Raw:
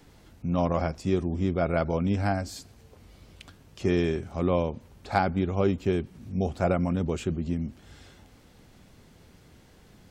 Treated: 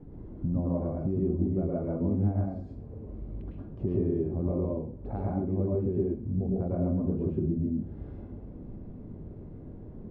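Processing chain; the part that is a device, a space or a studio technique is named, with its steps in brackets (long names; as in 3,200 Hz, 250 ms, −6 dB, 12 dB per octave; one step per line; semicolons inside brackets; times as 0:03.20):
television next door (downward compressor 3 to 1, threshold −40 dBFS, peak gain reduction 16.5 dB; low-pass filter 380 Hz 12 dB per octave; convolution reverb RT60 0.40 s, pre-delay 100 ms, DRR −4 dB)
level +9 dB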